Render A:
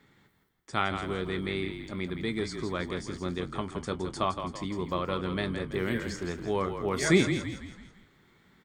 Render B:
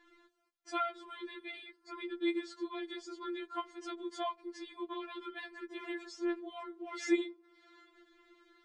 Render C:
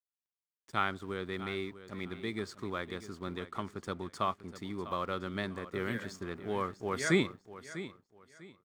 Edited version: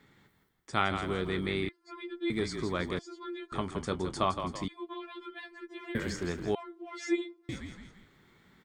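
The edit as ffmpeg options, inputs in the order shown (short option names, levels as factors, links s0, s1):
-filter_complex "[1:a]asplit=4[s0][s1][s2][s3];[0:a]asplit=5[s4][s5][s6][s7][s8];[s4]atrim=end=1.692[s9];[s0]atrim=start=1.688:end=2.302[s10];[s5]atrim=start=2.298:end=2.992[s11];[s1]atrim=start=2.988:end=3.522[s12];[s6]atrim=start=3.518:end=4.682[s13];[s2]atrim=start=4.678:end=5.952[s14];[s7]atrim=start=5.948:end=6.552[s15];[s3]atrim=start=6.548:end=7.492[s16];[s8]atrim=start=7.488[s17];[s9][s10]acrossfade=d=0.004:c1=hsin:c2=hsin[s18];[s18][s11]acrossfade=d=0.004:c1=hsin:c2=hsin[s19];[s19][s12]acrossfade=d=0.004:c1=hsin:c2=hsin[s20];[s20][s13]acrossfade=d=0.004:c1=hsin:c2=hsin[s21];[s21][s14]acrossfade=d=0.004:c1=hsin:c2=hsin[s22];[s22][s15]acrossfade=d=0.004:c1=hsin:c2=hsin[s23];[s23][s16]acrossfade=d=0.004:c1=hsin:c2=hsin[s24];[s24][s17]acrossfade=d=0.004:c1=hsin:c2=hsin"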